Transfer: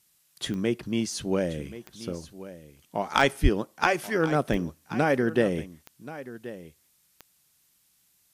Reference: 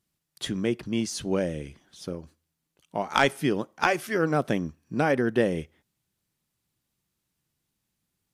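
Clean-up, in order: de-click; 3.42–3.54 HPF 140 Hz 24 dB/oct; expander -59 dBFS, range -21 dB; inverse comb 1.08 s -15.5 dB

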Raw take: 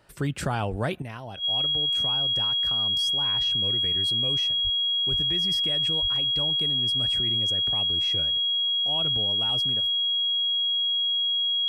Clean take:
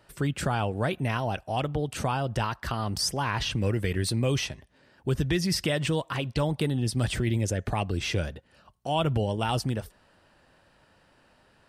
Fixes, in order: notch 3300 Hz, Q 30; de-plosive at 0.7/4.63/5.1/6.01; gain 0 dB, from 1.02 s +9.5 dB

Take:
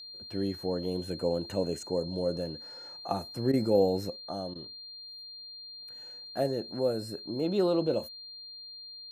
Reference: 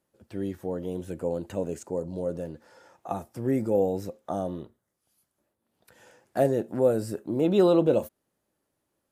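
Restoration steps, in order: notch 4200 Hz, Q 30; interpolate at 3.52/4.54, 13 ms; gain 0 dB, from 4.16 s +6.5 dB

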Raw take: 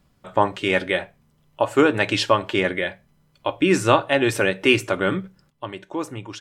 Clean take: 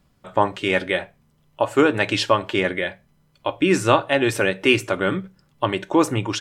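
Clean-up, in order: gain correction +10.5 dB, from 5.5

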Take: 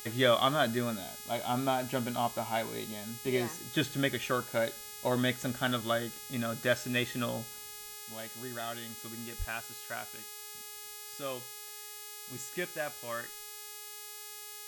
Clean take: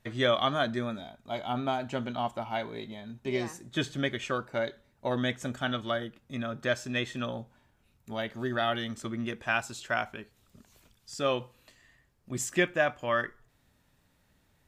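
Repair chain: de-hum 417.8 Hz, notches 40; 7.94 gain correction +10.5 dB; 9.38–9.5 HPF 140 Hz 24 dB/oct

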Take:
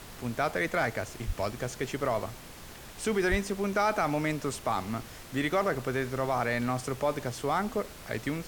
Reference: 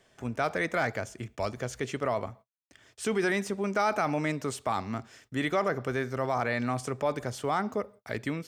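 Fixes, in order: 1.26–1.38 HPF 140 Hz 24 dB/oct; 3.3–3.42 HPF 140 Hz 24 dB/oct; noise print and reduce 15 dB

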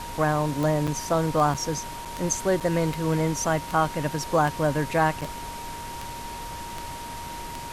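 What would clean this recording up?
de-click; notch 940 Hz, Q 30; interpolate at 0.87/1.54/2.05/2.6/5.21, 6.5 ms; noise print and reduce 30 dB

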